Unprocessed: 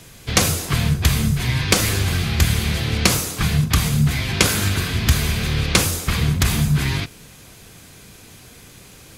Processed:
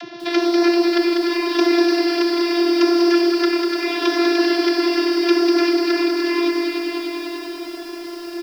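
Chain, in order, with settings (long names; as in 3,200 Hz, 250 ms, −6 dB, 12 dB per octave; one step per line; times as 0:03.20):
upward compression, threshold −37 dBFS
dynamic equaliser 150 Hz, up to +5 dB, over −33 dBFS, Q 1.2
downward compressor 8 to 1, threshold −23 dBFS, peak gain reduction 15 dB
leveller curve on the samples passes 2
downsampling to 11,025 Hz
channel vocoder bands 32, saw 316 Hz
echo with a time of its own for lows and highs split 1,200 Hz, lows 126 ms, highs 323 ms, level −5 dB
wrong playback speed 44.1 kHz file played as 48 kHz
hum removal 248.2 Hz, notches 6
feedback echo at a low word length 195 ms, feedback 80%, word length 7 bits, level −4.5 dB
level −1.5 dB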